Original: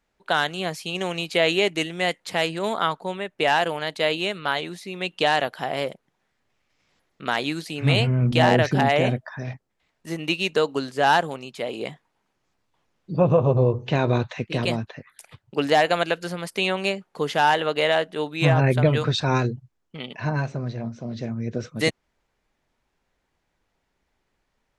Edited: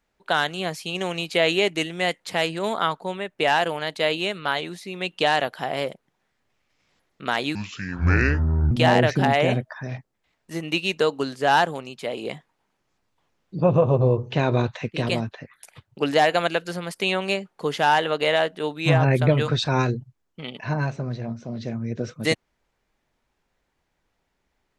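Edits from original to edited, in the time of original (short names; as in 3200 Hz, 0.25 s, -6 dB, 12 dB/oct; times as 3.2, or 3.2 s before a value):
7.55–8.27 speed 62%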